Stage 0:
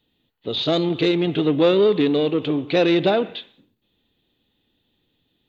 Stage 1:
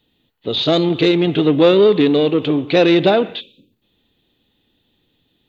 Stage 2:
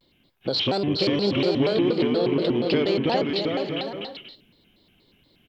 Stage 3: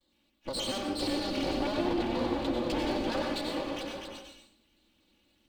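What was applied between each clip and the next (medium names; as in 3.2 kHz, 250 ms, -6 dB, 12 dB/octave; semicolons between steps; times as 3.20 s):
time-frequency box 3.41–3.72 s, 590–2300 Hz -28 dB; trim +5 dB
compression 6:1, threshold -23 dBFS, peak gain reduction 14.5 dB; on a send: bouncing-ball echo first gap 410 ms, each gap 0.6×, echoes 5; on the sum: vibrato with a chosen wave square 4.2 Hz, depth 250 cents; trim +1 dB
comb filter that takes the minimum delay 3.5 ms; plate-style reverb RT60 0.52 s, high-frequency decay 0.8×, pre-delay 80 ms, DRR 1 dB; trim -9 dB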